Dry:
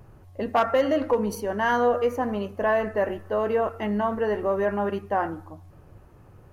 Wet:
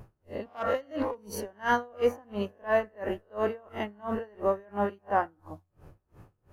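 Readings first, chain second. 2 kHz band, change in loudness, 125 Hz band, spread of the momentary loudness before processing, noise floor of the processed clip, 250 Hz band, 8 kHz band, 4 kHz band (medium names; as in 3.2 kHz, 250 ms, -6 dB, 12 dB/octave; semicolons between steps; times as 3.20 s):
-4.5 dB, -6.0 dB, -6.5 dB, 6 LU, -75 dBFS, -7.0 dB, no reading, -5.0 dB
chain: reverse spectral sustain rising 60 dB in 0.34 s; logarithmic tremolo 2.9 Hz, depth 31 dB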